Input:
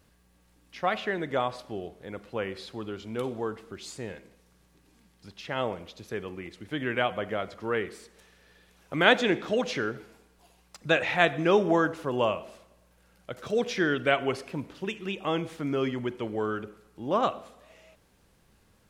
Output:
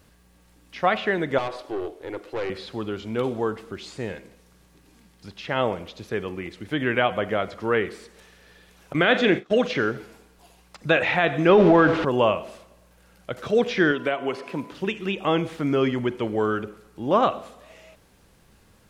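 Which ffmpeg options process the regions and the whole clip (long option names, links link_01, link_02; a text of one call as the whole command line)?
ffmpeg -i in.wav -filter_complex "[0:a]asettb=1/sr,asplit=3[link_01][link_02][link_03];[link_01]atrim=end=1.384[link_04];[link_02]atrim=start=1.38:end=2.5,asetpts=PTS-STARTPTS,afade=type=in:duration=0.004:curve=qsin,afade=type=out:start_time=1.116:duration=0.004:curve=qsin,lowshelf=frequency=250:width_type=q:width=3:gain=-9.5,aeval=exprs='(tanh(35.5*val(0)+0.4)-tanh(0.4))/35.5':channel_layout=same[link_05];[link_03]atrim=start=2.496[link_06];[link_04][link_05]acrossfade=duration=0.004:curve1=hsin:curve2=qsin[link_07];[link_07][link_06]acrossfade=duration=0.004:curve1=qsin:curve2=hsin,asettb=1/sr,asplit=3[link_08][link_09][link_10];[link_08]atrim=end=8.934[link_11];[link_09]atrim=start=8.93:end=9.75,asetpts=PTS-STARTPTS,afade=type=in:duration=0.004:curve=qsin,afade=type=out:start_time=0.816:duration=0.004:curve=qsin,agate=range=-28dB:threshold=-35dB:ratio=16:release=100:detection=peak,equalizer=frequency=920:width=5.6:gain=-8.5,asplit=2[link_12][link_13];[link_13]adelay=40,volume=-13dB[link_14];[link_12][link_14]amix=inputs=2:normalize=0,atrim=end_sample=36162[link_15];[link_10]atrim=start=9.746[link_16];[link_11][link_15]acrossfade=duration=0.004:curve1=hsin:curve2=qsin[link_17];[link_17][link_16]acrossfade=duration=0.004:curve1=qsin:curve2=hsin,asettb=1/sr,asplit=3[link_18][link_19][link_20];[link_18]atrim=end=11.494[link_21];[link_19]atrim=start=11.49:end=12.05,asetpts=PTS-STARTPTS,afade=type=in:duration=0.004:curve=qsin,afade=type=out:start_time=0.556:duration=0.004:curve=qsin,aeval=exprs='val(0)+0.5*0.0178*sgn(val(0))':channel_layout=same,lowpass=3800,acontrast=37[link_22];[link_20]atrim=start=12.046[link_23];[link_21][link_22]acrossfade=duration=0.004:curve1=hsin:curve2=qsin[link_24];[link_24][link_23]acrossfade=duration=0.004:curve1=qsin:curve2=hsin,asettb=1/sr,asplit=3[link_25][link_26][link_27];[link_25]atrim=end=13.914[link_28];[link_26]atrim=start=13.91:end=14.72,asetpts=PTS-STARTPTS,afade=type=in:duration=0.004:curve=qsin,afade=type=out:start_time=0.806:duration=0.004:curve=qsin,highpass=190,acrossover=split=1100|3900[link_29][link_30][link_31];[link_29]acompressor=threshold=-30dB:ratio=4[link_32];[link_30]acompressor=threshold=-39dB:ratio=4[link_33];[link_31]acompressor=threshold=-53dB:ratio=4[link_34];[link_32][link_33][link_34]amix=inputs=3:normalize=0,aeval=exprs='val(0)+0.00224*sin(2*PI*1000*n/s)':channel_layout=same[link_35];[link_27]atrim=start=14.716[link_36];[link_28][link_35]acrossfade=duration=0.004:curve1=hsin:curve2=qsin[link_37];[link_37][link_36]acrossfade=duration=0.004:curve1=qsin:curve2=hsin,acrossover=split=4300[link_38][link_39];[link_39]acompressor=threshold=-57dB:ratio=4:attack=1:release=60[link_40];[link_38][link_40]amix=inputs=2:normalize=0,alimiter=level_in=13dB:limit=-1dB:release=50:level=0:latency=1,volume=-6.5dB" out.wav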